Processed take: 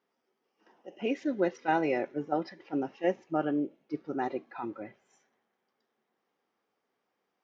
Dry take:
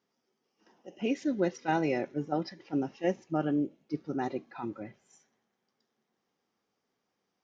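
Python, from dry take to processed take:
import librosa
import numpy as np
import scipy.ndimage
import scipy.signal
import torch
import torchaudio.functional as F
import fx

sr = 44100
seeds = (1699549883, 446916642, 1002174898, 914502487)

y = fx.bass_treble(x, sr, bass_db=-10, treble_db=-12)
y = F.gain(torch.from_numpy(y), 2.5).numpy()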